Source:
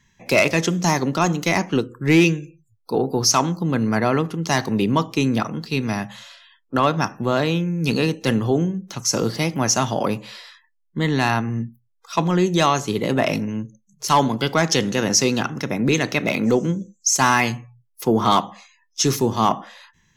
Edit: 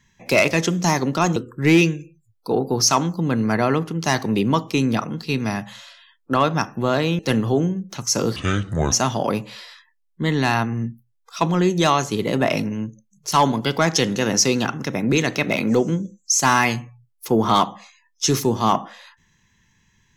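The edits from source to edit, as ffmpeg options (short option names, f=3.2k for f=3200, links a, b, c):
-filter_complex "[0:a]asplit=5[a][b][c][d][e];[a]atrim=end=1.362[f];[b]atrim=start=1.788:end=7.622[g];[c]atrim=start=8.168:end=9.344[h];[d]atrim=start=9.34:end=9.68,asetpts=PTS-STARTPTS,asetrate=26901,aresample=44100,atrim=end_sample=24580,asetpts=PTS-STARTPTS[i];[e]atrim=start=9.676[j];[f][g]acrossfade=d=0.004:c1=hsin:c2=hsin[k];[k][h]acrossfade=d=0.004:c1=hsin:c2=hsin[l];[l][i]acrossfade=d=0.004:c1=hsin:c2=hsin[m];[m][j]acrossfade=d=0.004:c1=hsin:c2=hsin"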